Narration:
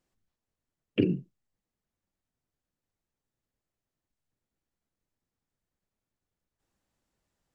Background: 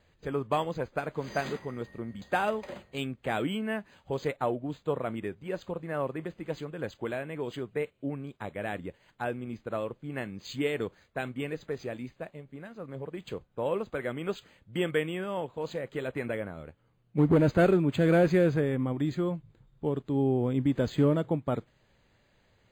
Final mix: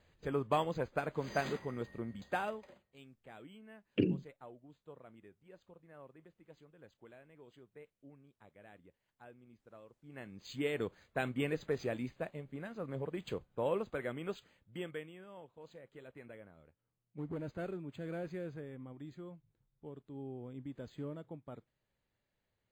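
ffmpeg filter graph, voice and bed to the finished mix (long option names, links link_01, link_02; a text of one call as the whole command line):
ffmpeg -i stem1.wav -i stem2.wav -filter_complex "[0:a]adelay=3000,volume=-5.5dB[link_01];[1:a]volume=19dB,afade=type=out:start_time=2.02:duration=0.77:silence=0.105925,afade=type=in:start_time=9.95:duration=1.43:silence=0.0749894,afade=type=out:start_time=12.88:duration=2.24:silence=0.11885[link_02];[link_01][link_02]amix=inputs=2:normalize=0" out.wav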